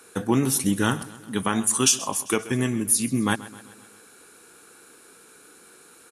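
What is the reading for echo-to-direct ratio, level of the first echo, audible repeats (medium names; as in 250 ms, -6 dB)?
-16.0 dB, -17.5 dB, 4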